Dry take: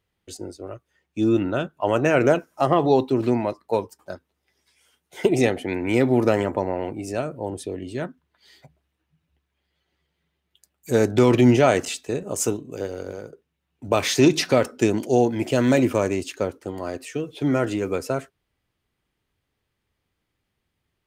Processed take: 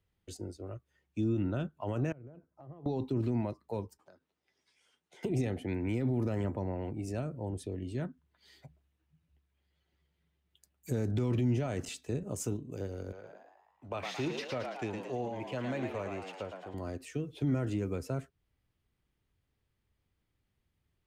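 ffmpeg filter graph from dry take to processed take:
ffmpeg -i in.wav -filter_complex "[0:a]asettb=1/sr,asplit=3[link_01][link_02][link_03];[link_01]atrim=end=2.124[link_04];[link_02]atrim=start=2.12:end=2.86,asetpts=PTS-STARTPTS,afade=type=in:duration=0.004:curve=qsin,afade=type=out:start_time=0.736:duration=0.004:curve=qsin,acompressor=threshold=-32dB:ratio=8:attack=3.2:release=140:knee=1:detection=peak,bandpass=frequency=130:width_type=q:width=0.58,equalizer=frequency=220:width_type=o:width=1.8:gain=-6.5[link_05];[link_03]atrim=start=2.856[link_06];[link_04][link_05]acrossfade=duration=0.004:curve1=hsin:curve2=qsin[link_07];[link_07][link_06]acrossfade=duration=0.004:curve1=qsin:curve2=hsin,asettb=1/sr,asplit=3[link_08][link_09][link_10];[link_08]atrim=end=3.974[link_11];[link_09]atrim=start=3.97:end=5.23,asetpts=PTS-STARTPTS,afade=type=in:duration=0.004:curve=qsin,afade=type=out:start_time=1.256:duration=0.004:curve=qsin,lowshelf=frequency=180:gain=-8.5,acompressor=threshold=-46dB:ratio=20:attack=3.2:release=140:knee=1:detection=peak,highpass=120,lowpass=7000[link_12];[link_10]atrim=start=5.226[link_13];[link_11][link_12]acrossfade=duration=0.004:curve1=hsin:curve2=qsin[link_14];[link_14][link_13]acrossfade=duration=0.004:curve1=qsin:curve2=hsin,asettb=1/sr,asplit=3[link_15][link_16][link_17];[link_15]atrim=end=13.124[link_18];[link_16]atrim=start=13.12:end=16.74,asetpts=PTS-STARTPTS,afade=type=in:duration=0.004:curve=qsin,afade=type=out:start_time=3.616:duration=0.004:curve=qsin,acrossover=split=510 4000:gain=0.224 1 0.2[link_19][link_20][link_21];[link_19][link_20][link_21]amix=inputs=3:normalize=0,asplit=8[link_22][link_23][link_24][link_25][link_26][link_27][link_28][link_29];[link_23]adelay=111,afreqshift=88,volume=-6dB[link_30];[link_24]adelay=222,afreqshift=176,volume=-11.5dB[link_31];[link_25]adelay=333,afreqshift=264,volume=-17dB[link_32];[link_26]adelay=444,afreqshift=352,volume=-22.5dB[link_33];[link_27]adelay=555,afreqshift=440,volume=-28.1dB[link_34];[link_28]adelay=666,afreqshift=528,volume=-33.6dB[link_35];[link_29]adelay=777,afreqshift=616,volume=-39.1dB[link_36];[link_22][link_30][link_31][link_32][link_33][link_34][link_35][link_36]amix=inputs=8:normalize=0,atrim=end_sample=159642[link_37];[link_17]atrim=start=16.736[link_38];[link_18][link_37]acrossfade=duration=0.004:curve1=hsin:curve2=qsin[link_39];[link_39][link_38]acrossfade=duration=0.004:curve1=qsin:curve2=hsin,lowshelf=frequency=180:gain=9.5,alimiter=limit=-12.5dB:level=0:latency=1:release=30,acrossover=split=250[link_40][link_41];[link_41]acompressor=threshold=-41dB:ratio=1.5[link_42];[link_40][link_42]amix=inputs=2:normalize=0,volume=-7.5dB" out.wav

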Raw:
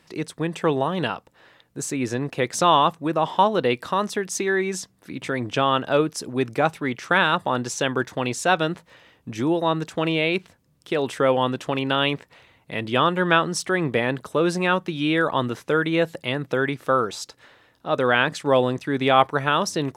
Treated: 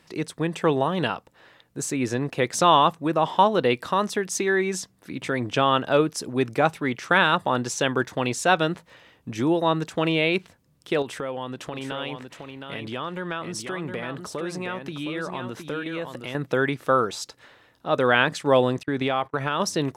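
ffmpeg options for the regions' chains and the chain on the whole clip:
ffmpeg -i in.wav -filter_complex "[0:a]asettb=1/sr,asplit=3[link_01][link_02][link_03];[link_01]atrim=end=11.024[link_04];[link_02]atrim=start=11.02:end=16.35,asetpts=PTS-STARTPTS,afade=type=in:duration=0.004:curve=qsin,afade=type=out:start_time=5.326:duration=0.004:curve=qsin,acompressor=threshold=-32dB:ratio=2.5:attack=3.2:release=140:knee=1:detection=peak,aecho=1:1:716:0.473,atrim=end_sample=235053[link_05];[link_03]atrim=start=16.346[link_06];[link_04][link_05]acrossfade=duration=0.004:curve1=hsin:curve2=qsin[link_07];[link_07][link_06]acrossfade=duration=0.004:curve1=qsin:curve2=hsin,asettb=1/sr,asplit=3[link_08][link_09][link_10];[link_08]atrim=end=18.834[link_11];[link_09]atrim=start=18.83:end=19.6,asetpts=PTS-STARTPTS,afade=type=in:duration=0.004:curve=qsin,afade=type=out:start_time=0.766:duration=0.004:curve=qsin,agate=range=-25dB:threshold=-32dB:ratio=16:release=100:detection=peak,highshelf=frequency=7200:gain=-5,acompressor=threshold=-20dB:ratio=4:attack=3.2:release=140:knee=1:detection=peak[link_12];[link_10]atrim=start=19.596[link_13];[link_11][link_12]acrossfade=duration=0.004:curve1=hsin:curve2=qsin[link_14];[link_14][link_13]acrossfade=duration=0.004:curve1=qsin:curve2=hsin" out.wav

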